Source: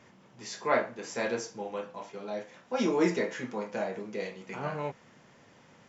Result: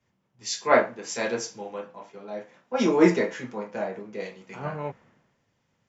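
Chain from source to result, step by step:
in parallel at 0 dB: downward compressor, threshold −40 dBFS, peak gain reduction 18 dB
on the sum: multiband upward and downward expander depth 100%

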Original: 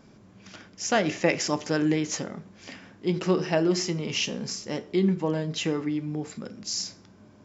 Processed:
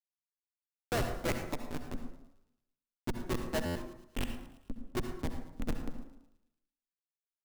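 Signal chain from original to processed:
reverb reduction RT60 1.4 s
Bessel high-pass filter 400 Hz, order 4
high shelf with overshoot 3,500 Hz −13.5 dB, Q 1.5
in parallel at +0.5 dB: downward compressor 12 to 1, threshold −41 dBFS, peak gain reduction 22.5 dB
on the sum: comparator with hysteresis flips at −21.5 dBFS
amplitude modulation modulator 250 Hz, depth 30%
wave folding −35.5 dBFS
delay with a high-pass on its return 111 ms, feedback 57%, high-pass 2,900 Hz, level −16 dB
on a send at −5.5 dB: convolution reverb RT60 0.80 s, pre-delay 58 ms
on the sum: buffer that repeats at 0:03.65, samples 512, times 8
level +8 dB

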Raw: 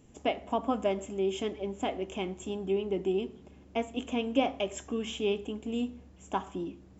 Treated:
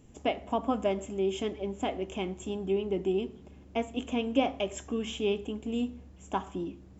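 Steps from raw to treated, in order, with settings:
low-shelf EQ 130 Hz +5 dB

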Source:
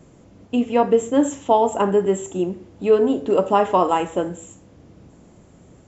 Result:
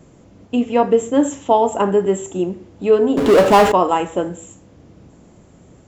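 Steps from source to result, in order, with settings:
0:03.17–0:03.72: power curve on the samples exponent 0.5
level +2 dB

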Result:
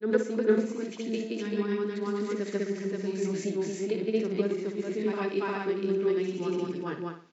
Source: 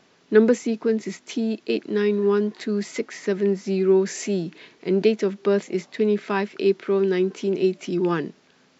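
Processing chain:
granular cloud 251 ms, grains 29 per second, spray 412 ms, pitch spread up and down by 0 semitones
tempo change 1.2×
flutter between parallel walls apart 10.2 metres, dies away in 0.4 s

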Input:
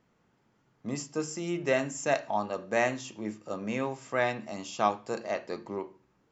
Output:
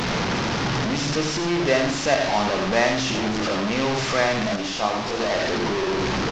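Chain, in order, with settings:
linear delta modulator 32 kbit/s, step −24.5 dBFS
on a send: multi-tap delay 87/409 ms −7/−18 dB
0:04.56–0:05.20: on the sum: micro pitch shift up and down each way 59 cents
level +6 dB

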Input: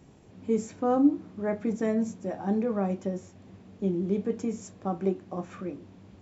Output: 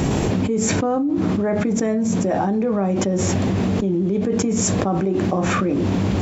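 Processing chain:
envelope flattener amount 100%
level −3.5 dB

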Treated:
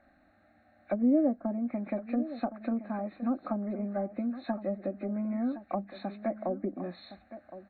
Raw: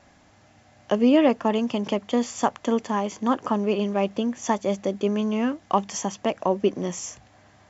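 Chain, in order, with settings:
hearing-aid frequency compression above 1,400 Hz 1.5 to 1
treble cut that deepens with the level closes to 580 Hz, closed at −18 dBFS
phaser with its sweep stopped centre 650 Hz, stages 8
on a send: single-tap delay 1,065 ms −13.5 dB
on the sum: level −5.5 dB

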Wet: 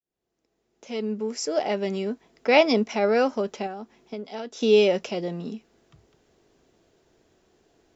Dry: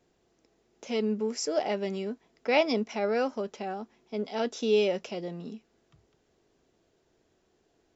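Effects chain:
fade in at the beginning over 2.32 s
0:03.66–0:04.61: downward compressor 8 to 1, threshold −38 dBFS, peak gain reduction 13 dB
level +6.5 dB

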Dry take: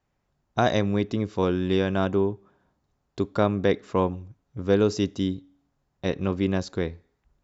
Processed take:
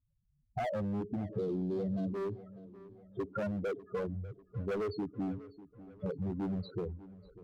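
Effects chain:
hearing-aid frequency compression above 3,000 Hz 1.5 to 1
spectral peaks only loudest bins 4
0:03.68–0:05.22: parametric band 210 Hz −4 dB 1.1 octaves
hard clipping −27 dBFS, distortion −9 dB
0:01.29–0:02.14: octave-band graphic EQ 125/250/500/1,000/2,000/4,000 Hz +9/+8/+6/−8/−8/+10 dB
downward compressor 6 to 1, threshold −35 dBFS, peak gain reduction 14 dB
on a send: feedback echo with a low-pass in the loop 595 ms, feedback 51%, low-pass 3,500 Hz, level −17.5 dB
on the sum: level +1.5 dB

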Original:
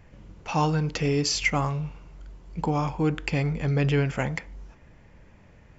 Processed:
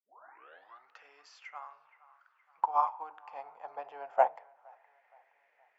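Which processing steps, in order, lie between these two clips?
turntable start at the beginning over 0.98 s
dynamic equaliser 2,100 Hz, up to −5 dB, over −47 dBFS, Q 2.7
in parallel at 0 dB: brickwall limiter −20.5 dBFS, peak gain reduction 9 dB
on the sum: envelope filter 770–2,400 Hz, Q 2.5, down, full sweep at −27 dBFS
hum removal 101 Hz, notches 29
high-pass filter sweep 1,500 Hz → 500 Hz, 0:01.64–0:05.43
on a send: delay with a band-pass on its return 469 ms, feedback 48%, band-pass 1,200 Hz, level −15.5 dB
on the sum: expander for the loud parts 2.5 to 1, over −33 dBFS
level +3.5 dB

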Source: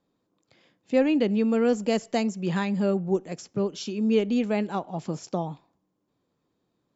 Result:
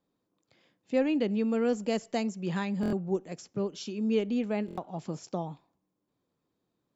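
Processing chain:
0:04.31–0:04.81: high-shelf EQ 4,100 Hz −6 dB
buffer that repeats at 0:02.81/0:04.66, samples 1,024, times 4
level −5 dB

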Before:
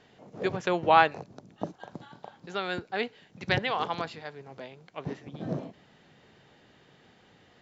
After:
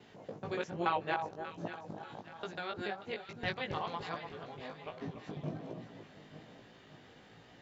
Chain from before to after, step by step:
reversed piece by piece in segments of 143 ms
downward compressor 1.5 to 1, threshold −50 dBFS, peak gain reduction 12.5 dB
delay that swaps between a low-pass and a high-pass 293 ms, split 1,200 Hz, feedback 69%, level −8 dB
chorus effect 1.2 Hz, delay 17.5 ms, depth 2.3 ms
level +3.5 dB

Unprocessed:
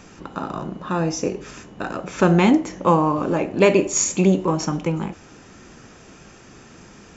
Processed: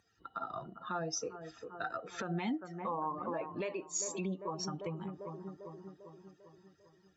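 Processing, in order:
spectral dynamics exaggerated over time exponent 2
high-pass filter 250 Hz 12 dB per octave
high-shelf EQ 5,600 Hz −7.5 dB
on a send: bucket-brigade delay 397 ms, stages 4,096, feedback 53%, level −17 dB
on the sum: downward compressor 3 to 1, threshold −40 dBFS, peak gain reduction 20 dB
brickwall limiter −31.5 dBFS, peak gain reduction 9 dB
dynamic equaliser 380 Hz, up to −5 dB, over −51 dBFS, Q 1.6
level +5.5 dB

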